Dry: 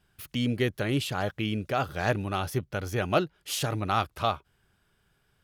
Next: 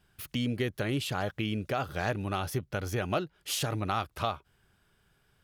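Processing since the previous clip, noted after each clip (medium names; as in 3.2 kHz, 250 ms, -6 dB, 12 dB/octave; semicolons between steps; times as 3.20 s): compression 2.5:1, threshold -30 dBFS, peak gain reduction 8 dB; trim +1 dB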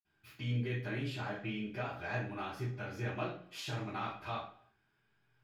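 reverberation RT60 0.55 s, pre-delay 47 ms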